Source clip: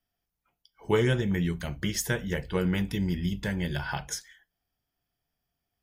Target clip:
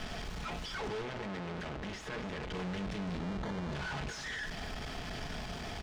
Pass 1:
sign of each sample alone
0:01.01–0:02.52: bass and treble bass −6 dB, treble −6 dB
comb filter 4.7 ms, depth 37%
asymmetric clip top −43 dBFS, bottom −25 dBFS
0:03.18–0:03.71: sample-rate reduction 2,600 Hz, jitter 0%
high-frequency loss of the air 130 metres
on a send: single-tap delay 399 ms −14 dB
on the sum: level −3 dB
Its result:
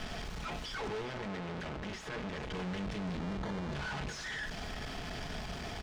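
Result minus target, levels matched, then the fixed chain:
echo 150 ms late
sign of each sample alone
0:01.01–0:02.52: bass and treble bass −6 dB, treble −6 dB
comb filter 4.7 ms, depth 37%
asymmetric clip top −43 dBFS, bottom −25 dBFS
0:03.18–0:03.71: sample-rate reduction 2,600 Hz, jitter 0%
high-frequency loss of the air 130 metres
on a send: single-tap delay 249 ms −14 dB
on the sum: level −3 dB

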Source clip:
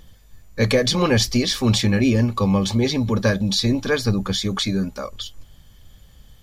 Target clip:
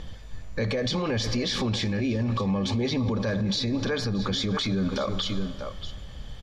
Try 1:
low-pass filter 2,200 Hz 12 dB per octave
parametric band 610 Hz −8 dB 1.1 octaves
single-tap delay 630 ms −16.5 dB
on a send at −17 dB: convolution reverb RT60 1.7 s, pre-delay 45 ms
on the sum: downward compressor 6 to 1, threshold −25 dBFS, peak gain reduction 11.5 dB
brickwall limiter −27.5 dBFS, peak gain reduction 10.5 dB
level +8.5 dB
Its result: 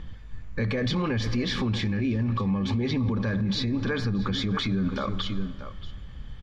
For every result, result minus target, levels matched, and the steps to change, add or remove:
500 Hz band −3.5 dB; 4,000 Hz band −3.0 dB
change: parametric band 610 Hz +2 dB 1.1 octaves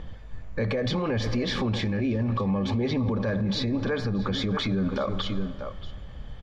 4,000 Hz band −4.0 dB
change: low-pass filter 4,800 Hz 12 dB per octave

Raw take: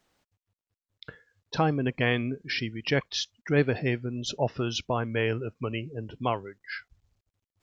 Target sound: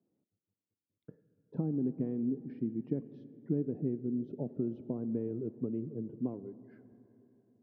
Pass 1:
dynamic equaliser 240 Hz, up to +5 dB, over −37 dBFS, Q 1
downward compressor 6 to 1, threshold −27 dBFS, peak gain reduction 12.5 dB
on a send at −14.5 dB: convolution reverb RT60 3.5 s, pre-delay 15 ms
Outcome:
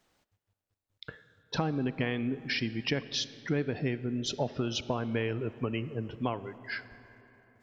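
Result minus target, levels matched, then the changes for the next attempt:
250 Hz band −3.0 dB
add after downward compressor: flat-topped band-pass 240 Hz, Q 0.97

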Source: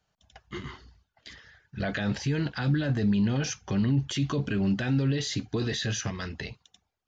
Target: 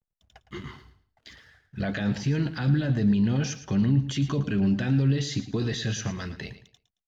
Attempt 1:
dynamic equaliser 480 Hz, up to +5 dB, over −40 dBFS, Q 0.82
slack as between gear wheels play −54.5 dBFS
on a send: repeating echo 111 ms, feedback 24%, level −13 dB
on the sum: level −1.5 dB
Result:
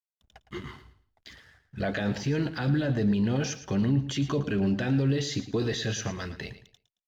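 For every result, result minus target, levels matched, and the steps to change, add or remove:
slack as between gear wheels: distortion +9 dB; 500 Hz band +5.5 dB
change: slack as between gear wheels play −61.5 dBFS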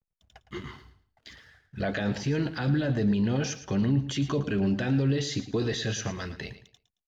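500 Hz band +5.5 dB
change: dynamic equaliser 170 Hz, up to +5 dB, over −40 dBFS, Q 0.82

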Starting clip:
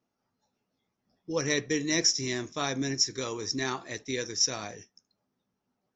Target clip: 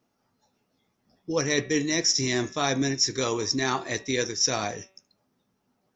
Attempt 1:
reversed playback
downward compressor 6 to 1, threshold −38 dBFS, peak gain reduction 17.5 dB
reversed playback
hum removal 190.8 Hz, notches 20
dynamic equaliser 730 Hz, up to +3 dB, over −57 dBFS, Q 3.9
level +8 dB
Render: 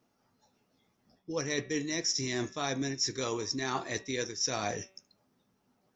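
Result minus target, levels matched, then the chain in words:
downward compressor: peak gain reduction +8 dB
reversed playback
downward compressor 6 to 1, threshold −28.5 dBFS, peak gain reduction 9.5 dB
reversed playback
hum removal 190.8 Hz, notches 20
dynamic equaliser 730 Hz, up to +3 dB, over −57 dBFS, Q 3.9
level +8 dB

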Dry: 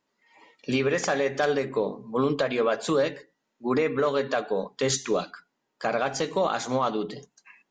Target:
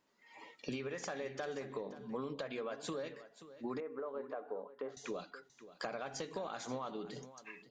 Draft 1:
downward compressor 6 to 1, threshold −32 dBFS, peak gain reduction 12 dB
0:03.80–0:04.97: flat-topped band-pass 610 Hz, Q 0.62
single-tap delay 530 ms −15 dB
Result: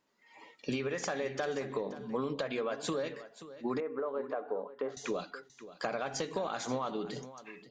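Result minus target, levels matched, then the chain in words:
downward compressor: peak gain reduction −6.5 dB
downward compressor 6 to 1, threshold −40 dBFS, peak gain reduction 19 dB
0:03.80–0:04.97: flat-topped band-pass 610 Hz, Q 0.62
single-tap delay 530 ms −15 dB

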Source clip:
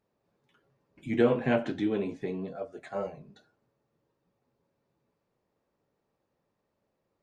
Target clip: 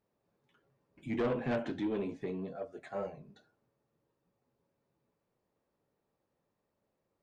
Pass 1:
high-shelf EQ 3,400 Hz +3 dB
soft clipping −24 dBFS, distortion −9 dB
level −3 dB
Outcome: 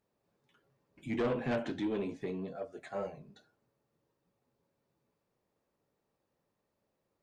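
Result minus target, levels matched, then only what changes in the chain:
8,000 Hz band +4.5 dB
change: high-shelf EQ 3,400 Hz −3 dB

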